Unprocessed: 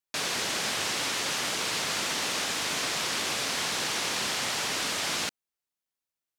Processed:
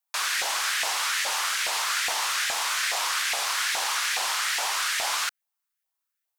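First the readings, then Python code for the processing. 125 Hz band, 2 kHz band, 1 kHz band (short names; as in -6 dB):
under -20 dB, +4.5 dB, +5.0 dB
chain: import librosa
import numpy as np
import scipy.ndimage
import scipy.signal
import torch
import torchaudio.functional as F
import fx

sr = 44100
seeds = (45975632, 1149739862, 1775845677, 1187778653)

y = fx.high_shelf(x, sr, hz=9800.0, db=9.5)
y = fx.filter_lfo_highpass(y, sr, shape='saw_up', hz=2.4, low_hz=680.0, high_hz=1900.0, q=2.7)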